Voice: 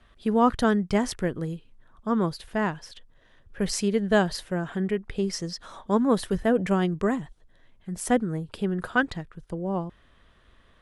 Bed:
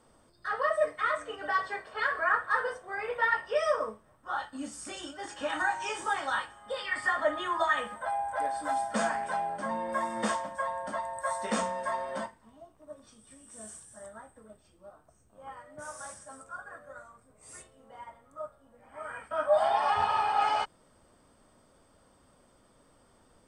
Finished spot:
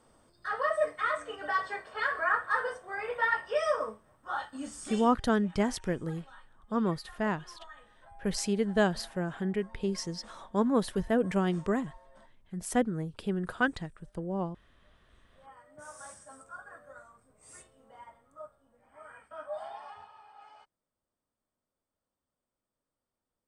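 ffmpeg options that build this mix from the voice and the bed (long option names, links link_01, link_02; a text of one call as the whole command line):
ffmpeg -i stem1.wav -i stem2.wav -filter_complex "[0:a]adelay=4650,volume=-4.5dB[link_01];[1:a]volume=19dB,afade=type=out:start_time=4.96:duration=0.21:silence=0.0749894,afade=type=in:start_time=14.87:duration=1.25:silence=0.1,afade=type=out:start_time=17.76:duration=2.35:silence=0.0630957[link_02];[link_01][link_02]amix=inputs=2:normalize=0" out.wav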